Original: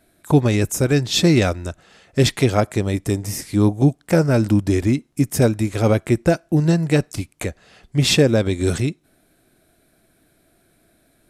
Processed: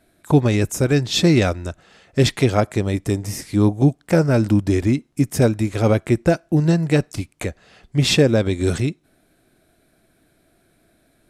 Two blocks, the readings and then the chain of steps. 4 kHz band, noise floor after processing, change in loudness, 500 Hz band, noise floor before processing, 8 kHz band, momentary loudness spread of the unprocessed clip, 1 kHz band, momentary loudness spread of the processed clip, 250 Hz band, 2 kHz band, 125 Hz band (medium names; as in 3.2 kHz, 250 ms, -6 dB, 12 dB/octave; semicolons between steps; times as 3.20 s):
-1.0 dB, -62 dBFS, 0.0 dB, 0.0 dB, -61 dBFS, -2.5 dB, 10 LU, 0.0 dB, 10 LU, 0.0 dB, -0.5 dB, 0.0 dB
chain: treble shelf 8.6 kHz -6 dB